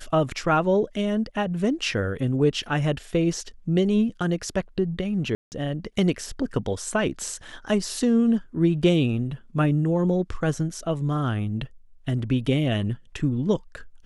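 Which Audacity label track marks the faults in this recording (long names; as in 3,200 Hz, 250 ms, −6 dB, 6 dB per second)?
5.350000	5.520000	drop-out 169 ms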